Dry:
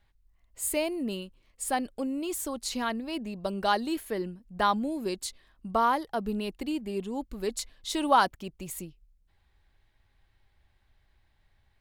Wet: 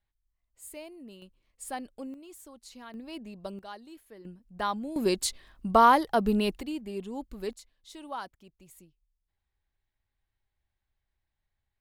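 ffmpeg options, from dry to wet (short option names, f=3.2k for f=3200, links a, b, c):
-af "asetnsamples=n=441:p=0,asendcmd='1.22 volume volume -8dB;2.14 volume volume -16dB;2.94 volume volume -7dB;3.59 volume volume -18dB;4.25 volume volume -5.5dB;4.96 volume volume 6dB;6.61 volume volume -3.5dB;7.53 volume volume -16dB',volume=-15dB"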